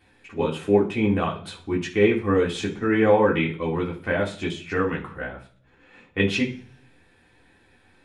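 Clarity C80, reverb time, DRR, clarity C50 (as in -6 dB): 16.0 dB, 0.45 s, -4.0 dB, 11.0 dB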